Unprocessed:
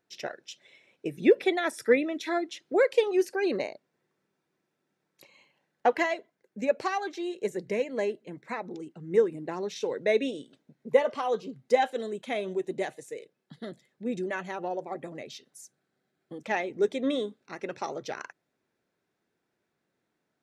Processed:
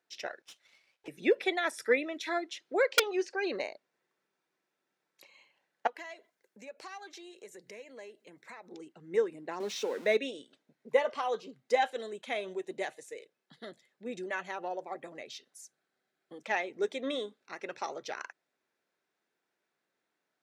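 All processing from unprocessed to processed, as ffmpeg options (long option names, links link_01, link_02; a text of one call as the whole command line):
ffmpeg -i in.wav -filter_complex "[0:a]asettb=1/sr,asplit=3[link_01][link_02][link_03];[link_01]atrim=end=0.424[link_04];[link_02]atrim=start=0.42:end=1.08,asetpts=PTS-STARTPTS,afade=type=in:duration=0.004:curve=qsin,afade=type=out:start_time=0.656:duration=0.004:curve=qsin,highpass=610,aeval=exprs='max(val(0),0)':channel_layout=same,aeval=exprs='(tanh(31.6*val(0)+0.35)-tanh(0.35))/31.6':channel_layout=same[link_05];[link_03]atrim=start=1.076[link_06];[link_04][link_05]acrossfade=duration=0.004:curve1=hsin:curve2=qsin[link_07];[link_07][link_06]acrossfade=duration=0.004:curve1=qsin:curve2=hsin,asettb=1/sr,asplit=3[link_08][link_09][link_10];[link_08]atrim=end=2.824[link_11];[link_09]atrim=start=2.82:end=3.58,asetpts=PTS-STARTPTS,afade=type=in:duration=0.004:curve=qsin,afade=type=out:start_time=0.756:duration=0.004:curve=qsin,lowpass=frequency=6700:width=0.5412,lowpass=frequency=6700:width=1.3066,aeval=exprs='(mod(4.73*val(0)+1,2)-1)/4.73':channel_layout=same[link_12];[link_10]atrim=start=3.576[link_13];[link_11][link_12]acrossfade=duration=0.004:curve1=hsin:curve2=qsin[link_14];[link_14][link_13]acrossfade=duration=0.004:curve1=qsin:curve2=hsin,asettb=1/sr,asplit=3[link_15][link_16][link_17];[link_15]atrim=end=5.874[link_18];[link_16]atrim=start=5.87:end=8.72,asetpts=PTS-STARTPTS,afade=type=in:duration=0.004:curve=qsin,afade=type=out:start_time=2.846:duration=0.004:curve=qsin,highshelf=frequency=5900:gain=9.5,acompressor=threshold=-44dB:ratio=3:attack=3.2:release=140:knee=1:detection=peak[link_19];[link_17]atrim=start=8.716[link_20];[link_18][link_19]acrossfade=duration=0.004:curve1=hsin:curve2=qsin[link_21];[link_21][link_20]acrossfade=duration=0.004:curve1=qsin:curve2=hsin,asettb=1/sr,asplit=3[link_22][link_23][link_24];[link_22]atrim=end=9.604[link_25];[link_23]atrim=start=9.6:end=10.17,asetpts=PTS-STARTPTS,afade=type=in:duration=0.004:curve=qsin,afade=type=out:start_time=0.566:duration=0.004:curve=qsin,aeval=exprs='val(0)+0.5*0.00891*sgn(val(0))':channel_layout=same,lowshelf=frequency=150:width_type=q:width=3:gain=-12.5[link_26];[link_24]atrim=start=10.166[link_27];[link_25][link_26]acrossfade=duration=0.004:curve1=hsin:curve2=qsin[link_28];[link_28][link_27]acrossfade=duration=0.004:curve1=qsin:curve2=hsin,highpass=frequency=740:poles=1,highshelf=frequency=10000:gain=-6.5" out.wav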